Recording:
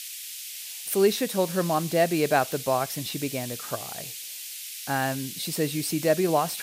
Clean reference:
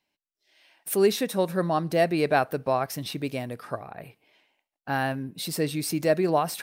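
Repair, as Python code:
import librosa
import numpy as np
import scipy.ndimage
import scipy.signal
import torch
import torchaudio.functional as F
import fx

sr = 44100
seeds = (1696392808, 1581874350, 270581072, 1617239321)

y = fx.noise_reduce(x, sr, print_start_s=0.08, print_end_s=0.58, reduce_db=30.0)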